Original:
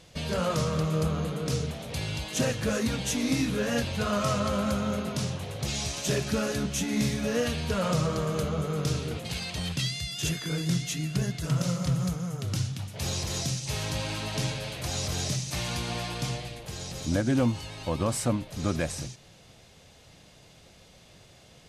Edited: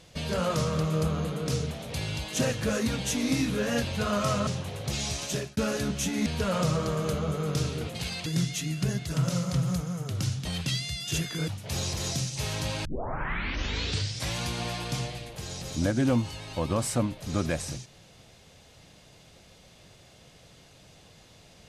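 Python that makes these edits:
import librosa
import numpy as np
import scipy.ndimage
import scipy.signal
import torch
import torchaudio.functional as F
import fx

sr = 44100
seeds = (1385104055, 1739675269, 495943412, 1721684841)

y = fx.edit(x, sr, fx.cut(start_s=4.47, length_s=0.75),
    fx.fade_out_span(start_s=6.0, length_s=0.32),
    fx.cut(start_s=7.01, length_s=0.55),
    fx.move(start_s=9.56, length_s=1.03, to_s=12.78),
    fx.tape_start(start_s=14.15, length_s=1.53), tone=tone)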